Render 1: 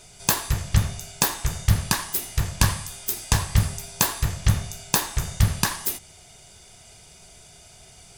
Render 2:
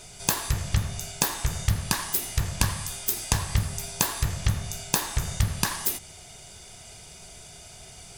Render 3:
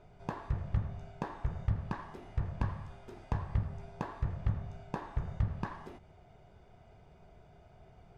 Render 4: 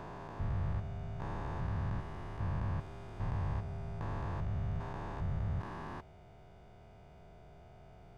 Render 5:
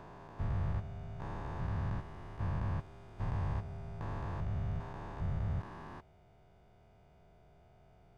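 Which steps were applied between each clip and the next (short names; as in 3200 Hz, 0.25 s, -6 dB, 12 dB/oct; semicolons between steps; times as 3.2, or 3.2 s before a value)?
compressor 3:1, threshold -25 dBFS, peak gain reduction 10 dB; gain +3 dB
LPF 1100 Hz 12 dB/oct; gain -7 dB
stepped spectrum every 0.4 s; gain +3.5 dB
upward expander 1.5:1, over -48 dBFS; gain +1 dB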